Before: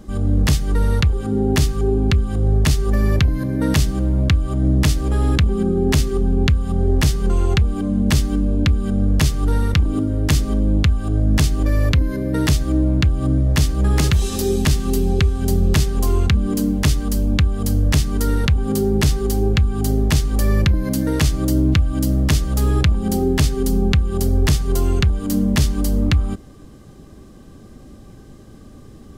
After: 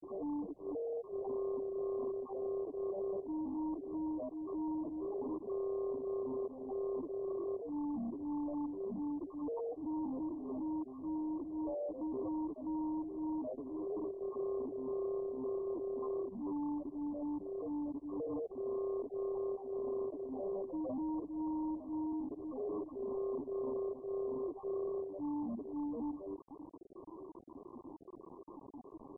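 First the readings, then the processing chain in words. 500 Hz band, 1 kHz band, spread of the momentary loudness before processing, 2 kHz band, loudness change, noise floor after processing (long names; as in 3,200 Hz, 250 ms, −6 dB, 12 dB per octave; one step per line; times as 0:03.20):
−12.0 dB, −16.0 dB, 3 LU, below −40 dB, −21.0 dB, −54 dBFS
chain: high-pass filter 310 Hz 24 dB per octave
dynamic equaliser 6,900 Hz, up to +4 dB, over −46 dBFS, Q 4.2
in parallel at +1 dB: downward compressor 6 to 1, threshold −37 dBFS, peak gain reduction 18.5 dB
on the sum: spectral peaks only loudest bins 2
bit-depth reduction 8 bits, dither none
soft clipping −33.5 dBFS, distortion −6 dB
level −2.5 dB
MP2 8 kbit/s 24,000 Hz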